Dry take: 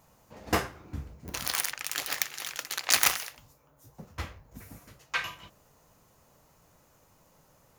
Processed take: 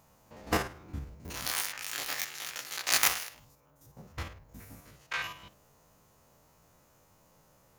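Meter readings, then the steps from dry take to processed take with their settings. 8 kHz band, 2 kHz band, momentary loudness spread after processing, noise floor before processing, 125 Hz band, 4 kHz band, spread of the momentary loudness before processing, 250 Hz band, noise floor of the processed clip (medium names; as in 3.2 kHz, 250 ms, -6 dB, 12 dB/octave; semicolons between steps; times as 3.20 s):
-2.5 dB, -2.0 dB, 25 LU, -63 dBFS, -1.5 dB, -2.5 dB, 24 LU, -1.5 dB, -64 dBFS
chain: spectrogram pixelated in time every 50 ms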